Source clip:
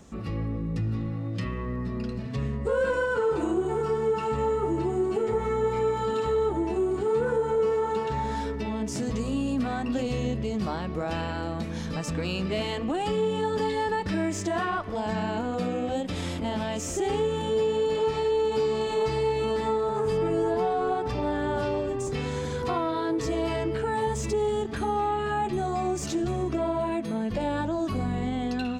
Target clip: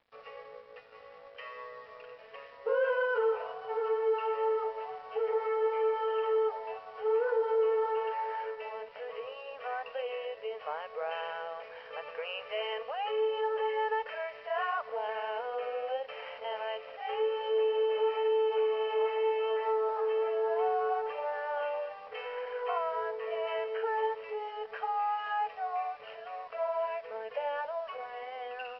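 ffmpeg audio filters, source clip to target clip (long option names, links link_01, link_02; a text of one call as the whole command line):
ffmpeg -i in.wav -af "afftfilt=real='re*between(b*sr/4096,420,3200)':imag='im*between(b*sr/4096,420,3200)':win_size=4096:overlap=0.75,aresample=11025,aeval=exprs='sgn(val(0))*max(abs(val(0))-0.00158,0)':channel_layout=same,aresample=44100,volume=-3dB" out.wav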